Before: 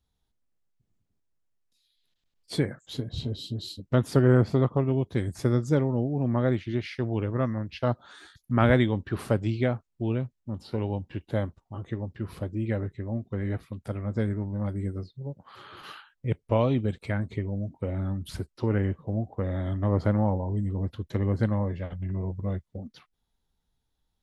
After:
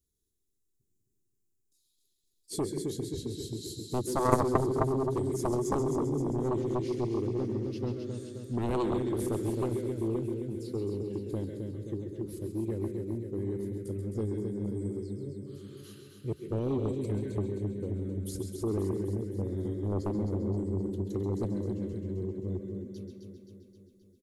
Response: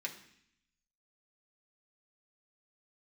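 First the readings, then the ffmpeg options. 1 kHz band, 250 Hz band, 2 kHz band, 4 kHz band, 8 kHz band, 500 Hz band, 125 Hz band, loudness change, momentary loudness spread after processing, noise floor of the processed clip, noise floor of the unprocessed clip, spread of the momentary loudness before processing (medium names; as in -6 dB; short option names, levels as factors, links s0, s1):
-1.5 dB, -3.5 dB, -13.5 dB, -7.0 dB, no reading, -2.5 dB, -7.0 dB, -4.5 dB, 9 LU, -76 dBFS, -78 dBFS, 12 LU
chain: -filter_complex "[0:a]firequalizer=gain_entry='entry(220,0);entry(380,11);entry(690,-21);entry(1500,-14);entry(6800,12)':delay=0.05:min_phase=1,aecho=1:1:263|526|789|1052|1315|1578|1841|2104:0.501|0.296|0.174|0.103|0.0607|0.0358|0.0211|0.0125,asplit=2[s0][s1];[1:a]atrim=start_sample=2205,adelay=133[s2];[s1][s2]afir=irnorm=-1:irlink=0,volume=0.562[s3];[s0][s3]amix=inputs=2:normalize=0,aeval=exprs='0.75*(cos(1*acos(clip(val(0)/0.75,-1,1)))-cos(1*PI/2))+0.335*(cos(3*acos(clip(val(0)/0.75,-1,1)))-cos(3*PI/2))+0.0473*(cos(7*acos(clip(val(0)/0.75,-1,1)))-cos(7*PI/2))+0.00531*(cos(8*acos(clip(val(0)/0.75,-1,1)))-cos(8*PI/2))':c=same,volume=0.596"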